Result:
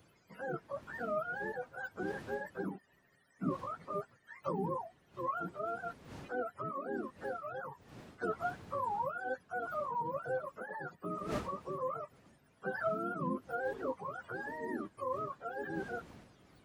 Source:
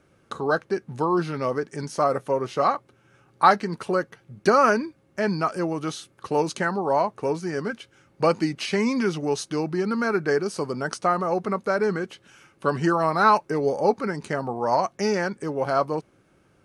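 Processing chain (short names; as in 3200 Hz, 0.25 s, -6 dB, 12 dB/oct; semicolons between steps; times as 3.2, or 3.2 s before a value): spectrum mirrored in octaves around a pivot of 470 Hz; wind noise 140 Hz -31 dBFS; differentiator; gain +9.5 dB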